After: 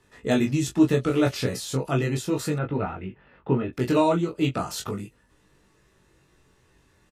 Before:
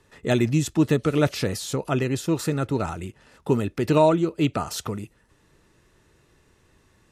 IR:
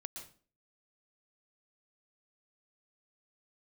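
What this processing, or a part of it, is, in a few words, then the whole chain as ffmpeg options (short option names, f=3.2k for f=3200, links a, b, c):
double-tracked vocal: -filter_complex "[0:a]asplit=2[a][b];[b]adelay=16,volume=-7dB[c];[a][c]amix=inputs=2:normalize=0,flanger=delay=20:depth=3.2:speed=0.37,asettb=1/sr,asplit=3[d][e][f];[d]atrim=end=2.584[g];[e]atrim=start=2.58:end=3.73,asetpts=PTS-STARTPTS,afade=t=in:d=0.004:c=qsin,afade=t=out:st=1.146:d=0.004:c=qsin,lowpass=f=2.8k:w=0.5412,lowpass=f=2.8k:w=1.3066[h];[f]atrim=start=3.726[i];[g][h]acrossfade=d=0.004:c1=hsin:c2=qsin[j];[j][i]acrossfade=d=0.004:c1=qsin:c2=hsin,volume=1dB"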